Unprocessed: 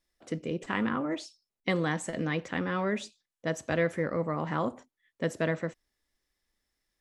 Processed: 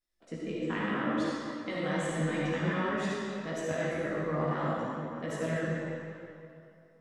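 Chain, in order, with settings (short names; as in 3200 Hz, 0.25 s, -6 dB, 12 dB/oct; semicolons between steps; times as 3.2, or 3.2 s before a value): level quantiser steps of 11 dB; digital reverb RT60 2.6 s, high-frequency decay 0.8×, pre-delay 15 ms, DRR -5.5 dB; chorus voices 4, 0.7 Hz, delay 17 ms, depth 4.4 ms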